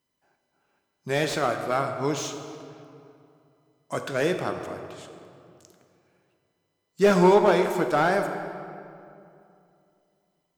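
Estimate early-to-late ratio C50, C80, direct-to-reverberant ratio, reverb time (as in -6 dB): 7.0 dB, 8.0 dB, 5.5 dB, 2.6 s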